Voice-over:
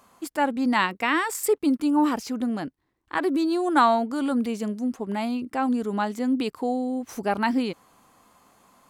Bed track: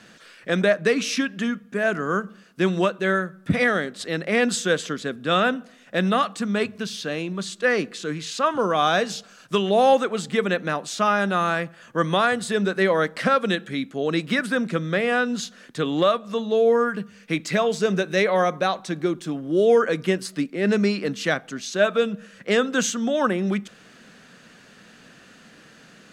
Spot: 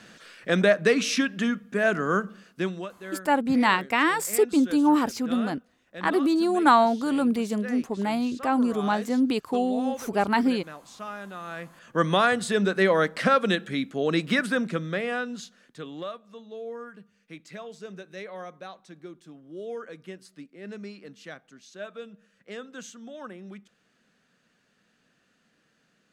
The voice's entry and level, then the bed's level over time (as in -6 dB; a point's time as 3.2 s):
2.90 s, +1.0 dB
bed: 2.48 s -0.5 dB
2.89 s -17 dB
11.42 s -17 dB
11.94 s -1 dB
14.42 s -1 dB
16.35 s -19 dB